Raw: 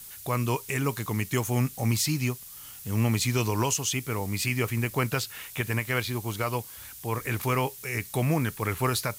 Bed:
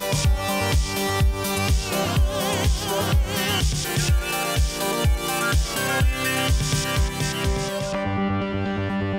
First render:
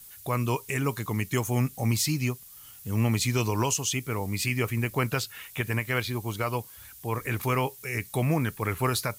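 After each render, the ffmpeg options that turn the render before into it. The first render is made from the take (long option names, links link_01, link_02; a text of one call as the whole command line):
ffmpeg -i in.wav -af "afftdn=noise_reduction=6:noise_floor=-45" out.wav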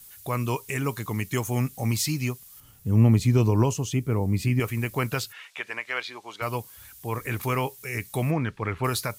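ffmpeg -i in.wav -filter_complex "[0:a]asettb=1/sr,asplit=3[link_01][link_02][link_03];[link_01]atrim=end=2.604[link_04];[link_02]atrim=start=2.6:end=4.6,asetpts=PTS-STARTPTS,afade=type=in:duration=0.004:curve=qsin,afade=type=out:start_time=1.996:duration=0.004:curve=qsin,tiltshelf=frequency=830:gain=8[link_05];[link_03]atrim=start=4.596[link_06];[link_04][link_05]acrossfade=duration=0.004:curve1=hsin:curve2=qsin[link_07];[link_07][link_06]acrossfade=duration=0.004:curve1=qsin:curve2=hsin,asplit=3[link_08][link_09][link_10];[link_08]afade=type=out:start_time=5.32:duration=0.02[link_11];[link_09]highpass=600,lowpass=5000,afade=type=in:start_time=5.32:duration=0.02,afade=type=out:start_time=6.41:duration=0.02[link_12];[link_10]afade=type=in:start_time=6.41:duration=0.02[link_13];[link_11][link_12][link_13]amix=inputs=3:normalize=0,asplit=3[link_14][link_15][link_16];[link_14]afade=type=out:start_time=8.3:duration=0.02[link_17];[link_15]lowpass=3600,afade=type=in:start_time=8.3:duration=0.02,afade=type=out:start_time=8.83:duration=0.02[link_18];[link_16]afade=type=in:start_time=8.83:duration=0.02[link_19];[link_17][link_18][link_19]amix=inputs=3:normalize=0" out.wav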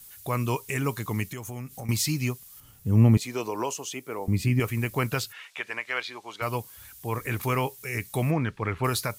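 ffmpeg -i in.wav -filter_complex "[0:a]asettb=1/sr,asplit=3[link_01][link_02][link_03];[link_01]atrim=end=1.284[link_04];[link_02]atrim=start=1.28:end=1.89,asetpts=PTS-STARTPTS,afade=type=in:duration=0.004:curve=qsin,afade=type=out:start_time=0.606:duration=0.004:curve=qsin,acompressor=threshold=-34dB:ratio=5:attack=3.2:release=140:knee=1:detection=peak[link_05];[link_03]atrim=start=1.886[link_06];[link_04][link_05]acrossfade=duration=0.004:curve1=hsin:curve2=qsin[link_07];[link_07][link_06]acrossfade=duration=0.004:curve1=qsin:curve2=hsin,asettb=1/sr,asplit=3[link_08][link_09][link_10];[link_08]atrim=end=3.174[link_11];[link_09]atrim=start=3.17:end=4.28,asetpts=PTS-STARTPTS,afade=type=in:duration=0.004:curve=qsin,afade=type=out:start_time=1.106:duration=0.004:curve=qsin,highpass=500[link_12];[link_10]atrim=start=4.276[link_13];[link_11][link_12]acrossfade=duration=0.004:curve1=hsin:curve2=qsin[link_14];[link_14][link_13]acrossfade=duration=0.004:curve1=qsin:curve2=hsin" out.wav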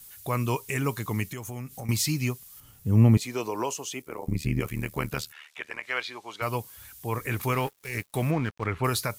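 ffmpeg -i in.wav -filter_complex "[0:a]asettb=1/sr,asplit=3[link_01][link_02][link_03];[link_01]atrim=end=4.024[link_04];[link_02]atrim=start=4.02:end=5.84,asetpts=PTS-STARTPTS,afade=type=in:duration=0.004:curve=qsin,afade=type=out:start_time=1.816:duration=0.004:curve=qsin,tremolo=f=75:d=0.889[link_05];[link_03]atrim=start=5.836[link_06];[link_04][link_05]acrossfade=duration=0.004:curve1=hsin:curve2=qsin[link_07];[link_07][link_06]acrossfade=duration=0.004:curve1=qsin:curve2=hsin,asettb=1/sr,asplit=3[link_08][link_09][link_10];[link_08]atrim=end=7.524[link_11];[link_09]atrim=start=7.52:end=8.66,asetpts=PTS-STARTPTS,afade=type=in:duration=0.004:curve=qsin,afade=type=out:start_time=1.136:duration=0.004:curve=qsin,aeval=exprs='sgn(val(0))*max(abs(val(0))-0.00841,0)':channel_layout=same[link_12];[link_10]atrim=start=8.656[link_13];[link_11][link_12]acrossfade=duration=0.004:curve1=hsin:curve2=qsin[link_14];[link_14][link_13]acrossfade=duration=0.004:curve1=qsin:curve2=hsin" out.wav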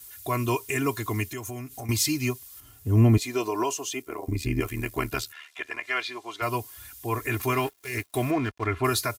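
ffmpeg -i in.wav -af "highpass=43,aecho=1:1:2.9:0.88" out.wav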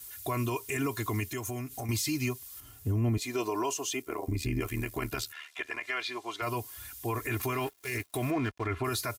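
ffmpeg -i in.wav -af "acompressor=threshold=-30dB:ratio=1.5,alimiter=limit=-22dB:level=0:latency=1:release=21" out.wav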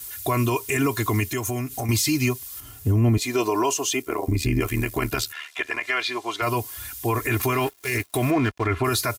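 ffmpeg -i in.wav -af "volume=9dB" out.wav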